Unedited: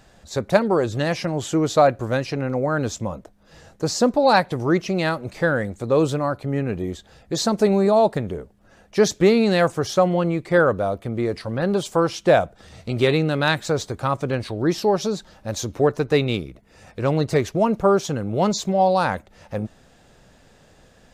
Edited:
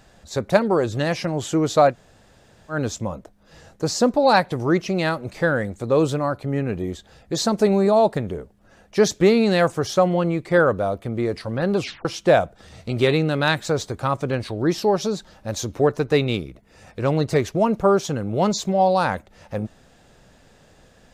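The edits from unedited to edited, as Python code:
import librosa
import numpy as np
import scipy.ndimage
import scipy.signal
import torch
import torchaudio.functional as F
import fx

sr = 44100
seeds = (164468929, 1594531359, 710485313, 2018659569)

y = fx.edit(x, sr, fx.room_tone_fill(start_s=1.92, length_s=0.81, crossfade_s=0.1),
    fx.tape_stop(start_s=11.77, length_s=0.28), tone=tone)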